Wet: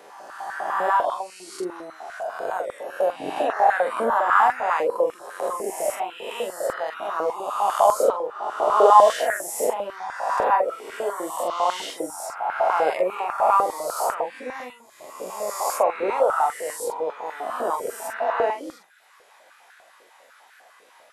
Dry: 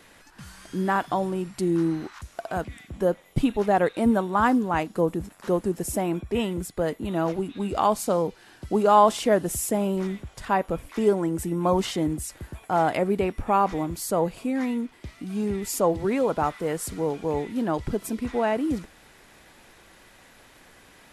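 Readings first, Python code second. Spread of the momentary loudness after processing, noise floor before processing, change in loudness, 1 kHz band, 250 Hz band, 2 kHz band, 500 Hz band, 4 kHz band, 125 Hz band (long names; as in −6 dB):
14 LU, −54 dBFS, +2.0 dB, +5.5 dB, −14.5 dB, +5.0 dB, +2.0 dB, +1.0 dB, below −20 dB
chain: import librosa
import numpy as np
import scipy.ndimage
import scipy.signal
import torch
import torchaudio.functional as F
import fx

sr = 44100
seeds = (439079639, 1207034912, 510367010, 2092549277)

y = fx.spec_swells(x, sr, rise_s=1.79)
y = fx.dereverb_blind(y, sr, rt60_s=0.89)
y = fx.doubler(y, sr, ms=44.0, db=-6.0)
y = fx.filter_held_highpass(y, sr, hz=10.0, low_hz=490.0, high_hz=1500.0)
y = F.gain(torch.from_numpy(y), -5.0).numpy()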